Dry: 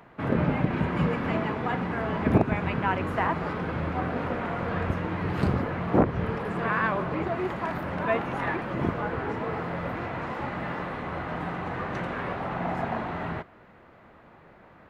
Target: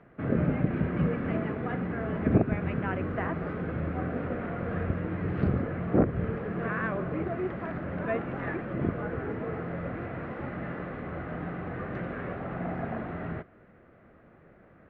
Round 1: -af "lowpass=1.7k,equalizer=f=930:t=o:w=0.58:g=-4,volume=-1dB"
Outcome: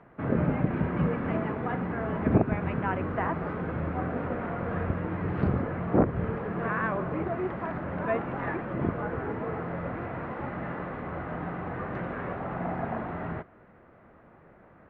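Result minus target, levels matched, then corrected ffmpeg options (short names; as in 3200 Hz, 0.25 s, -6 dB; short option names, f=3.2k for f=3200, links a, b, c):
1000 Hz band +3.5 dB
-af "lowpass=1.7k,equalizer=f=930:t=o:w=0.58:g=-12.5,volume=-1dB"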